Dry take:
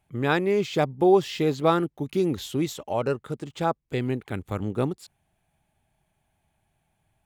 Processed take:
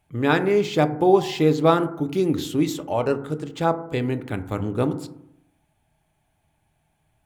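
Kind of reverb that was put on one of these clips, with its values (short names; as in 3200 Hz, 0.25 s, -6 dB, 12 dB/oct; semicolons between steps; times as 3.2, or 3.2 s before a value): FDN reverb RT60 0.75 s, low-frequency decay 1.2×, high-frequency decay 0.3×, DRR 8 dB; gain +2.5 dB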